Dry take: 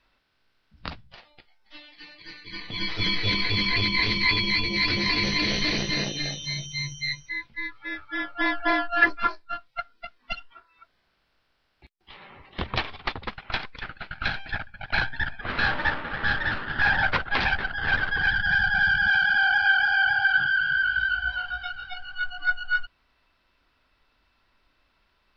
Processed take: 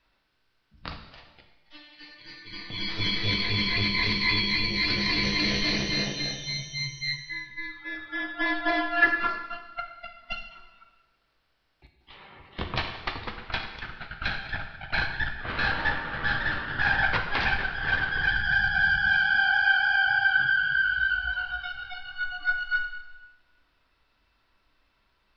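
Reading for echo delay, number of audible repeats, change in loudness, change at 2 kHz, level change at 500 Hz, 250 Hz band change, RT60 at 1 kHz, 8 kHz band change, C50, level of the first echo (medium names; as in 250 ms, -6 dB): no echo, no echo, -1.5 dB, -1.5 dB, -1.0 dB, -1.0 dB, 1.1 s, no reading, 7.0 dB, no echo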